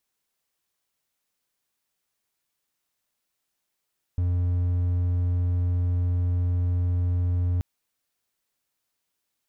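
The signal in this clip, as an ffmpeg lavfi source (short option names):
-f lavfi -i "aevalsrc='0.112*(1-4*abs(mod(88.6*t+0.25,1)-0.5))':d=3.43:s=44100"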